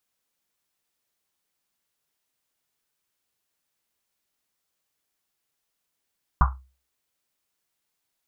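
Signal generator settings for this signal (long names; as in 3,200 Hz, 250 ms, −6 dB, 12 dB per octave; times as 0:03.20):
drum after Risset, pitch 65 Hz, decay 0.36 s, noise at 1,100 Hz, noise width 550 Hz, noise 40%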